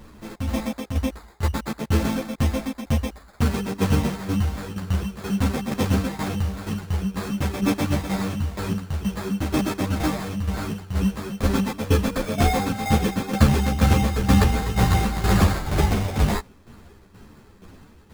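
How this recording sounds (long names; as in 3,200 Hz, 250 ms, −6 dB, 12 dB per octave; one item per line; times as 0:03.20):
tremolo saw down 2.1 Hz, depth 70%
aliases and images of a low sample rate 2,900 Hz, jitter 0%
a shimmering, thickened sound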